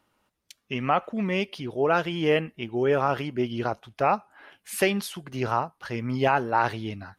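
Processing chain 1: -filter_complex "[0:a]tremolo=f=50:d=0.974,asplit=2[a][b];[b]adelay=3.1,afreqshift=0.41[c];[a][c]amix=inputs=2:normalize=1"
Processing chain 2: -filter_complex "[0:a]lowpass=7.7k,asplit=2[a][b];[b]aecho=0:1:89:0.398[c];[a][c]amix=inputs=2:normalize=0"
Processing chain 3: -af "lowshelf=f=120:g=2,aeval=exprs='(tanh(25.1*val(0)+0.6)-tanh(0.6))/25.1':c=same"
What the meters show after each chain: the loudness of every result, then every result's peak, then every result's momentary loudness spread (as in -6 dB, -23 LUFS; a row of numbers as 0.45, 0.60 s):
-34.0, -26.0, -34.5 LUFS; -11.5, -8.5, -24.5 dBFS; 9, 9, 7 LU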